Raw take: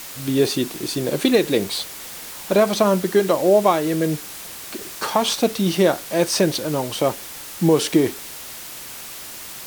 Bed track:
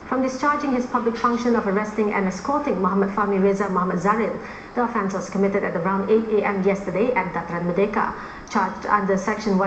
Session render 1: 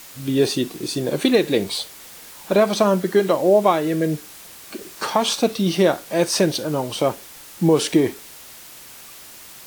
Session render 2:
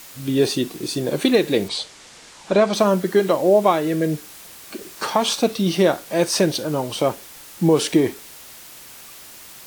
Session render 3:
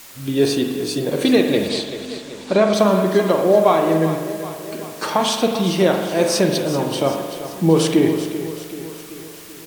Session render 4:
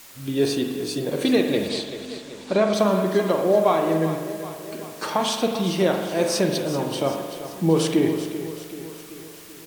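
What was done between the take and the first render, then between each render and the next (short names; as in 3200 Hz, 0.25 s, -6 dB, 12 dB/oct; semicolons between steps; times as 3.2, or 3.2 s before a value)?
noise print and reduce 6 dB
1.68–2.74 LPF 8100 Hz 24 dB/oct
feedback echo 0.385 s, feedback 56%, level -12 dB; spring tank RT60 1.3 s, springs 43 ms, chirp 75 ms, DRR 3.5 dB
gain -4.5 dB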